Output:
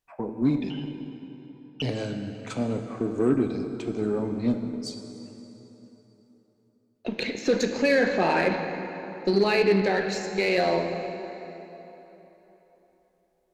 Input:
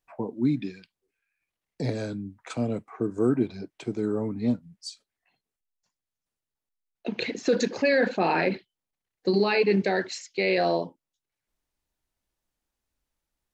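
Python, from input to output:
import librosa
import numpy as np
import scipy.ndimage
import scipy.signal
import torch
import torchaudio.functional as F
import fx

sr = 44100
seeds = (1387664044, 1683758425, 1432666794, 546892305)

y = fx.freq_invert(x, sr, carrier_hz=3200, at=(0.7, 1.82))
y = fx.rev_plate(y, sr, seeds[0], rt60_s=3.7, hf_ratio=0.7, predelay_ms=0, drr_db=5.0)
y = fx.cheby_harmonics(y, sr, harmonics=(8,), levels_db=(-30,), full_scale_db=-10.5)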